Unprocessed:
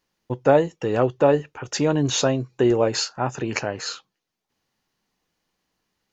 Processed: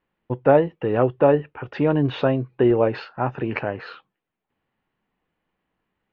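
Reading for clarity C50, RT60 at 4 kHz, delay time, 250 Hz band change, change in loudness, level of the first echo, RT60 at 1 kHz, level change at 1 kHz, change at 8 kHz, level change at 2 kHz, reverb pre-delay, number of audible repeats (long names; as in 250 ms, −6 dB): no reverb audible, no reverb audible, no echo audible, +1.0 dB, +1.0 dB, no echo audible, no reverb audible, +0.5 dB, can't be measured, −0.5 dB, no reverb audible, no echo audible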